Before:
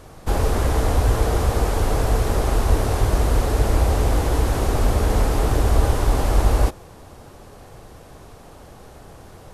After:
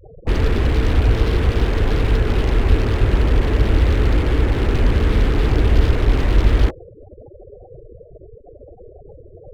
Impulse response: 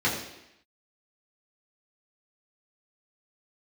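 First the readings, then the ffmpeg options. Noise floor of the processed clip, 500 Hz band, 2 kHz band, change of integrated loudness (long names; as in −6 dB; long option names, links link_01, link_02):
−44 dBFS, +0.5 dB, +4.0 dB, +2.5 dB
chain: -filter_complex "[0:a]lowpass=frequency=2800:poles=1,equalizer=frequency=470:width_type=o:width=1.4:gain=7,afftfilt=real='re*gte(hypot(re,im),0.0447)':imag='im*gte(hypot(re,im),0.0447)':win_size=1024:overlap=0.75,acrossover=split=380[link_01][link_02];[link_02]aeval=exprs='0.0376*(abs(mod(val(0)/0.0376+3,4)-2)-1)':channel_layout=same[link_03];[link_01][link_03]amix=inputs=2:normalize=0,volume=3dB"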